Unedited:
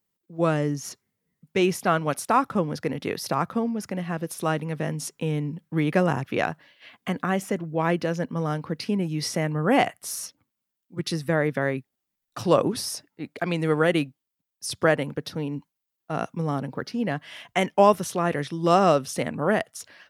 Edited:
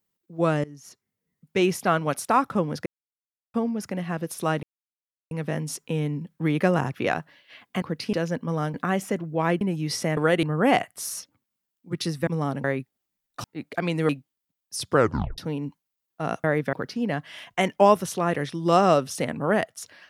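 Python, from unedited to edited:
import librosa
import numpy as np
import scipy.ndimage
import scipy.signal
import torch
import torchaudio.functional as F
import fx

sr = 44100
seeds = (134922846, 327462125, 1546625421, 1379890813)

y = fx.edit(x, sr, fx.fade_in_from(start_s=0.64, length_s=0.95, floor_db=-21.5),
    fx.silence(start_s=2.86, length_s=0.68),
    fx.insert_silence(at_s=4.63, length_s=0.68),
    fx.swap(start_s=7.14, length_s=0.87, other_s=8.62, other_length_s=0.31),
    fx.swap(start_s=11.33, length_s=0.29, other_s=16.34, other_length_s=0.37),
    fx.cut(start_s=12.42, length_s=0.66),
    fx.move(start_s=13.73, length_s=0.26, to_s=9.49),
    fx.tape_stop(start_s=14.82, length_s=0.46), tone=tone)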